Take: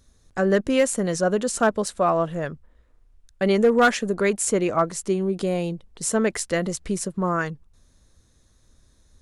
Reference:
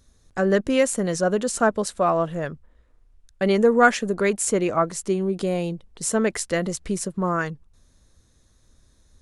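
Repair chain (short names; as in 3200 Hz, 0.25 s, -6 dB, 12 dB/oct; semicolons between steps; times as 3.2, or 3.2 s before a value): clip repair -10.5 dBFS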